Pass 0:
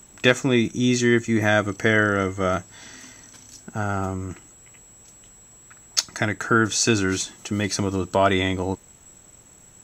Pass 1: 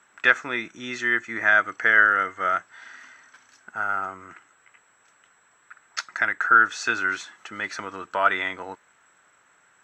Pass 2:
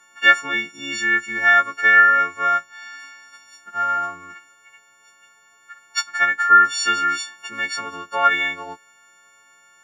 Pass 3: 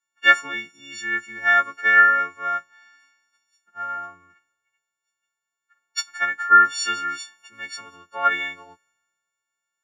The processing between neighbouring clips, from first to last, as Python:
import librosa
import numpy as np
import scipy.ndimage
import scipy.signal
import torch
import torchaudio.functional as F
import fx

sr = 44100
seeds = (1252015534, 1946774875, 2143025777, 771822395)

y1 = fx.bandpass_q(x, sr, hz=1500.0, q=2.6)
y1 = y1 * librosa.db_to_amplitude(6.5)
y2 = fx.freq_snap(y1, sr, grid_st=4)
y3 = fx.band_widen(y2, sr, depth_pct=70)
y3 = y3 * librosa.db_to_amplitude(-6.5)